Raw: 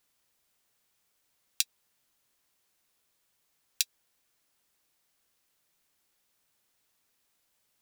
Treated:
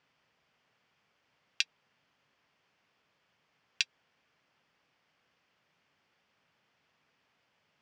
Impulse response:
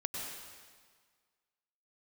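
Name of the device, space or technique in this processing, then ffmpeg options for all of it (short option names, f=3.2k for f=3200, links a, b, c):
guitar cabinet: -af "highpass=93,equalizer=f=150:t=q:w=4:g=4,equalizer=f=340:t=q:w=4:g=-4,equalizer=f=3.9k:t=q:w=4:g=-10,lowpass=f=4.2k:w=0.5412,lowpass=f=4.2k:w=1.3066,volume=8dB"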